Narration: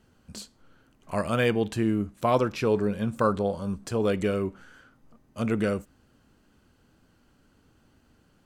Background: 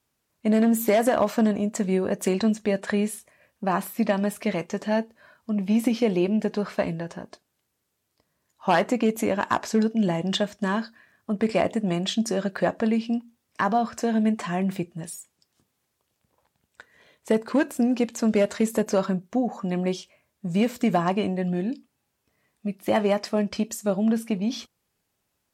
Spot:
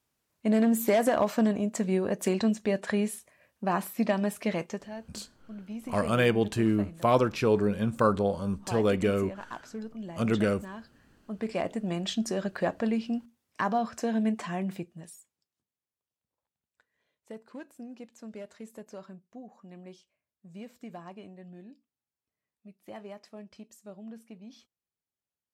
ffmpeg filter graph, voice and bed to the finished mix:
ffmpeg -i stem1.wav -i stem2.wav -filter_complex "[0:a]adelay=4800,volume=0dB[link_01];[1:a]volume=8.5dB,afade=type=out:start_time=4.66:duration=0.23:silence=0.211349,afade=type=in:start_time=10.83:duration=1.32:silence=0.251189,afade=type=out:start_time=14.36:duration=1.2:silence=0.149624[link_02];[link_01][link_02]amix=inputs=2:normalize=0" out.wav

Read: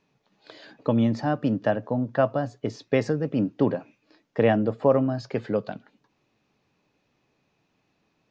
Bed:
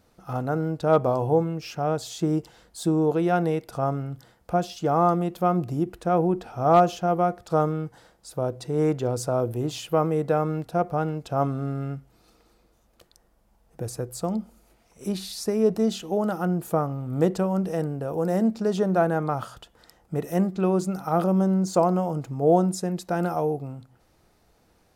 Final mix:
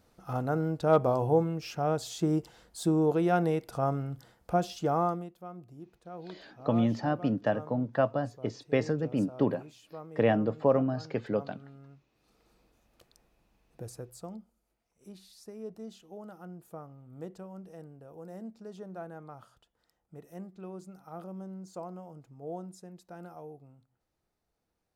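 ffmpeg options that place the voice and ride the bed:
ffmpeg -i stem1.wav -i stem2.wav -filter_complex "[0:a]adelay=5800,volume=-4.5dB[link_01];[1:a]volume=12.5dB,afade=type=out:start_time=4.8:duration=0.53:silence=0.11885,afade=type=in:start_time=12.11:duration=0.44:silence=0.158489,afade=type=out:start_time=13.25:duration=1.28:silence=0.188365[link_02];[link_01][link_02]amix=inputs=2:normalize=0" out.wav

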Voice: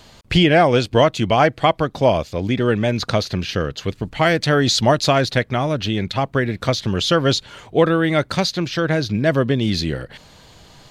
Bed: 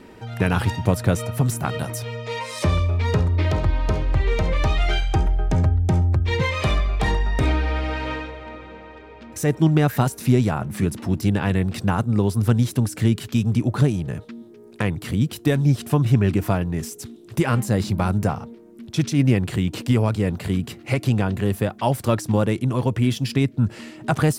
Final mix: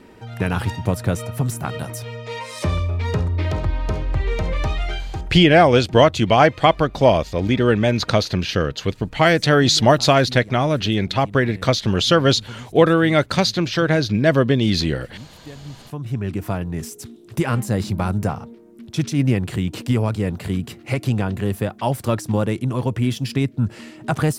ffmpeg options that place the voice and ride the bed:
ffmpeg -i stem1.wav -i stem2.wav -filter_complex "[0:a]adelay=5000,volume=1.5dB[link_01];[1:a]volume=17dB,afade=type=out:start_time=4.6:duration=0.86:silence=0.133352,afade=type=in:start_time=15.78:duration=1.08:silence=0.11885[link_02];[link_01][link_02]amix=inputs=2:normalize=0" out.wav

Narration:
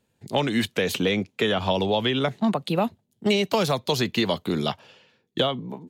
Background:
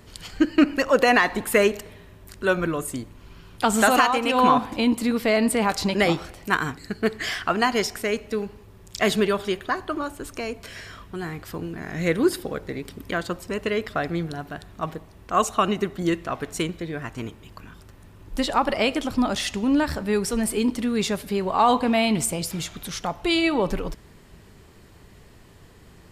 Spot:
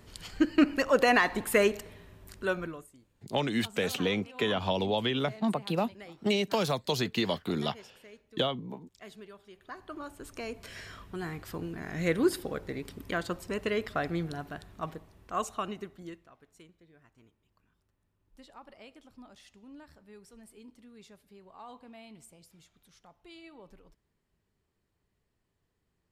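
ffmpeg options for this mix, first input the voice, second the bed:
ffmpeg -i stem1.wav -i stem2.wav -filter_complex "[0:a]adelay=3000,volume=-6dB[link_01];[1:a]volume=16.5dB,afade=type=out:start_time=2.29:duration=0.6:silence=0.0794328,afade=type=in:start_time=9.52:duration=1.3:silence=0.0794328,afade=type=out:start_time=14.37:duration=1.94:silence=0.0630957[link_02];[link_01][link_02]amix=inputs=2:normalize=0" out.wav

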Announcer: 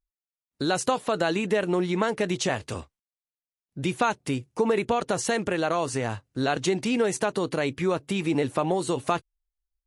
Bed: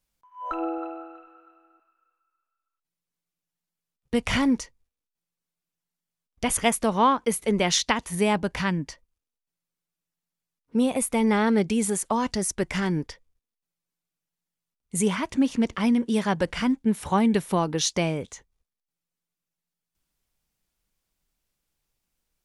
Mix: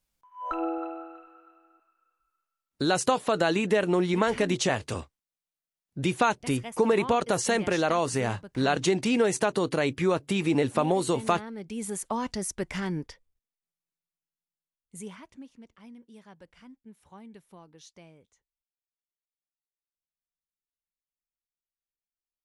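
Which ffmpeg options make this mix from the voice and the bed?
ffmpeg -i stem1.wav -i stem2.wav -filter_complex "[0:a]adelay=2200,volume=0.5dB[link_01];[1:a]volume=11.5dB,afade=type=out:start_time=2.39:duration=0.42:silence=0.141254,afade=type=in:start_time=11.58:duration=0.47:silence=0.237137,afade=type=out:start_time=13.08:duration=2.44:silence=0.0841395[link_02];[link_01][link_02]amix=inputs=2:normalize=0" out.wav

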